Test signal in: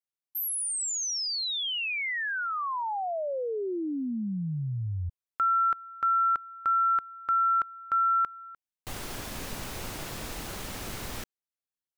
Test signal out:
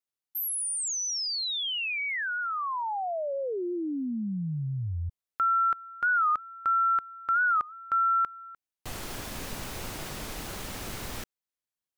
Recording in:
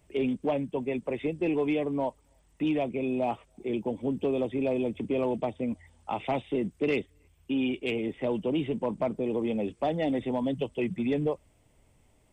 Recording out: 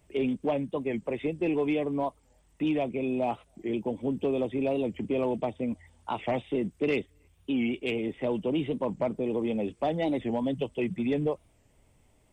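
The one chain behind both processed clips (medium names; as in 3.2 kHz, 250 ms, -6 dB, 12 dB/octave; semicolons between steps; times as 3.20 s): warped record 45 rpm, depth 160 cents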